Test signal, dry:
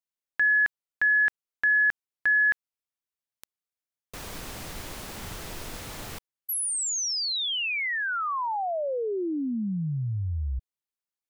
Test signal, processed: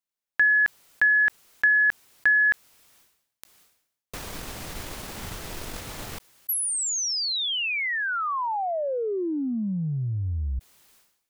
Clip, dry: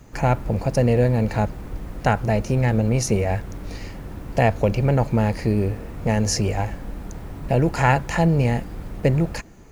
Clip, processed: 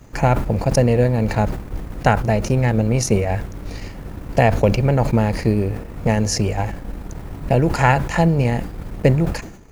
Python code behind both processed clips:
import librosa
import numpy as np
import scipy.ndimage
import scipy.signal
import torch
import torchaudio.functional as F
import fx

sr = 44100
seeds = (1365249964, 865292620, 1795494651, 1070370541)

y = fx.transient(x, sr, attack_db=3, sustain_db=-7)
y = fx.sustainer(y, sr, db_per_s=78.0)
y = y * librosa.db_to_amplitude(1.5)